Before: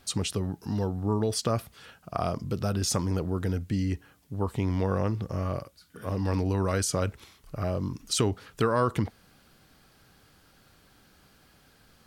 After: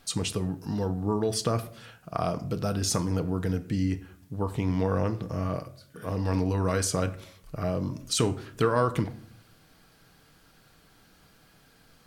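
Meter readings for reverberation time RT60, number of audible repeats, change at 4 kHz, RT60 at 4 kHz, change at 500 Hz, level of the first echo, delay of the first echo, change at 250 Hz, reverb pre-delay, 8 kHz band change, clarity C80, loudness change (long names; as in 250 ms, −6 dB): 0.60 s, no echo audible, +0.5 dB, 0.35 s, +1.0 dB, no echo audible, no echo audible, +1.0 dB, 4 ms, +0.5 dB, 18.5 dB, +0.5 dB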